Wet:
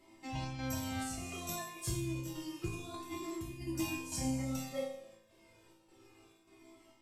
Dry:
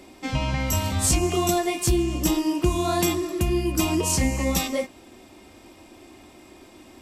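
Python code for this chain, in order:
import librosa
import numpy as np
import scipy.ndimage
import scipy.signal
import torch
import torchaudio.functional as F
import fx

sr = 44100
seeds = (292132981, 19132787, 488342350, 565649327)

y = fx.chopper(x, sr, hz=1.7, depth_pct=65, duty_pct=75)
y = fx.over_compress(y, sr, threshold_db=-27.0, ratio=-0.5, at=(2.68, 3.67))
y = fx.resonator_bank(y, sr, root=45, chord='minor', decay_s=0.7)
y = fx.comb_cascade(y, sr, direction='falling', hz=0.29)
y = F.gain(torch.from_numpy(y), 9.0).numpy()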